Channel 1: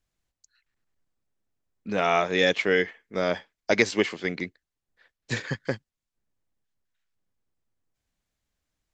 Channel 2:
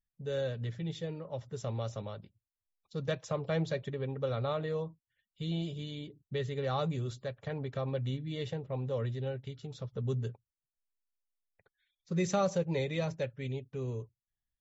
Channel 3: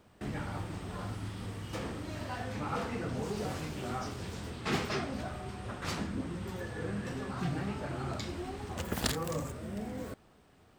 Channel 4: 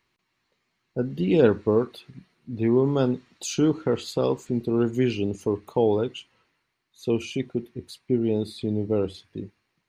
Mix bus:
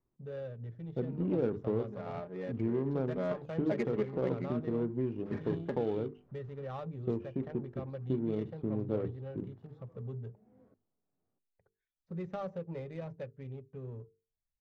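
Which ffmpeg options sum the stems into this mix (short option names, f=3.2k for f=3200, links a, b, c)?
-filter_complex "[0:a]aecho=1:1:4.9:0.78,volume=-11.5dB,afade=t=in:st=2.85:d=0.38:silence=0.251189[a];[1:a]volume=0dB[b];[2:a]highpass=120,tremolo=f=1.5:d=0.44,adelay=600,volume=-20dB[c];[3:a]volume=-10.5dB[d];[b][c]amix=inputs=2:normalize=0,highshelf=f=5.2k:g=8.5,acompressor=threshold=-50dB:ratio=1.5,volume=0dB[e];[a][d]amix=inputs=2:normalize=0,tiltshelf=f=1.5k:g=8,acompressor=threshold=-31dB:ratio=2.5,volume=0dB[f];[e][f]amix=inputs=2:normalize=0,acrossover=split=2900[g][h];[h]acompressor=threshold=-57dB:ratio=4:attack=1:release=60[i];[g][i]amix=inputs=2:normalize=0,bandreject=f=50:t=h:w=6,bandreject=f=100:t=h:w=6,bandreject=f=150:t=h:w=6,bandreject=f=200:t=h:w=6,bandreject=f=250:t=h:w=6,bandreject=f=300:t=h:w=6,bandreject=f=350:t=h:w=6,bandreject=f=400:t=h:w=6,bandreject=f=450:t=h:w=6,adynamicsmooth=sensitivity=5.5:basefreq=870"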